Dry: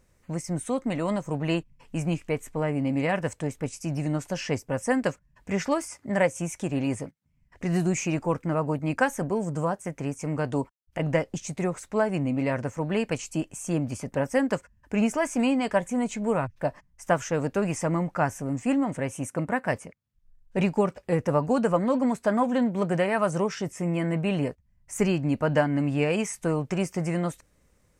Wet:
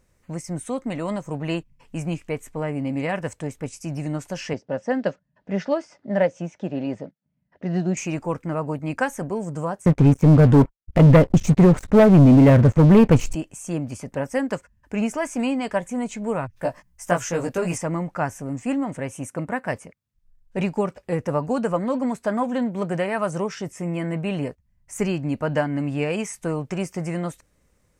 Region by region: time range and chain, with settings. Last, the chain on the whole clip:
4.53–7.97 block floating point 7-bit + speaker cabinet 160–4800 Hz, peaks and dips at 190 Hz +5 dB, 600 Hz +6 dB, 1100 Hz -6 dB, 2300 Hz -7 dB + mismatched tape noise reduction decoder only
9.86–13.35 tilt -3.5 dB/oct + sample leveller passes 3
16.53–17.78 high shelf 6300 Hz +8.5 dB + doubler 17 ms -2.5 dB
whole clip: dry

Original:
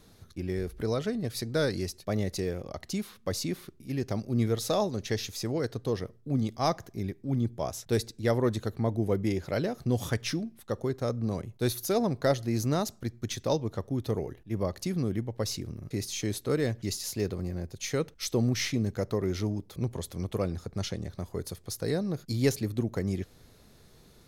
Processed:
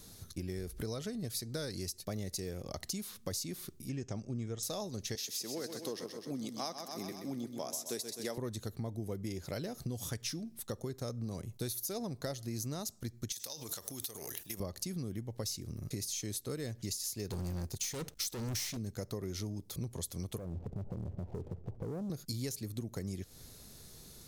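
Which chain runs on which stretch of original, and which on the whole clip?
3.89–4.63 Chebyshev low-pass 7700 Hz, order 4 + bell 4300 Hz -14.5 dB 0.39 oct + notch 2000 Hz, Q 24
5.15–8.38 Bessel high-pass 280 Hz, order 4 + feedback echo 0.128 s, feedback 54%, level -9 dB
13.32–14.6 transient shaper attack +7 dB, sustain +11 dB + tilt +4.5 dB/oct + compressor 5:1, threshold -40 dBFS
17.3–18.77 sample leveller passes 2 + hard clip -26 dBFS
20.38–22.1 steep low-pass 830 Hz 48 dB/oct + compressor, threshold -38 dBFS + sample leveller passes 2
whole clip: tone controls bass +3 dB, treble +13 dB; compressor 6:1, threshold -35 dBFS; gain -1.5 dB

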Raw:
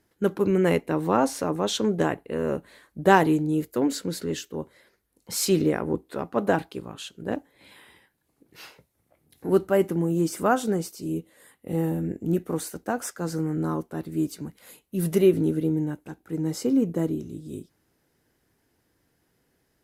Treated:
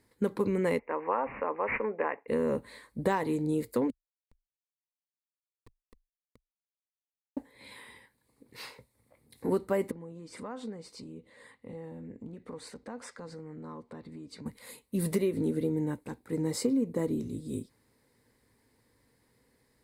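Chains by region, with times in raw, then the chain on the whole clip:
0.79–2.28 HPF 610 Hz + high shelf 5500 Hz -11.5 dB + careless resampling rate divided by 8×, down none, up filtered
3.9–7.37 compressor 4:1, threshold -38 dBFS + wah 3.9 Hz 200–2700 Hz, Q 4.8 + Schmitt trigger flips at -38 dBFS
9.91–14.46 LPF 4700 Hz + compressor 3:1, threshold -43 dBFS + bell 350 Hz -5 dB 0.3 oct
whole clip: de-esser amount 50%; ripple EQ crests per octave 0.96, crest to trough 8 dB; compressor 6:1, threshold -25 dBFS

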